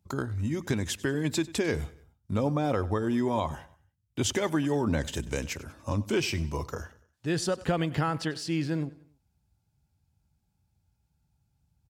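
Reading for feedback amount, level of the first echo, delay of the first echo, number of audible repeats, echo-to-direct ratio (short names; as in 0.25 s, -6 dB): 43%, -19.5 dB, 96 ms, 3, -18.5 dB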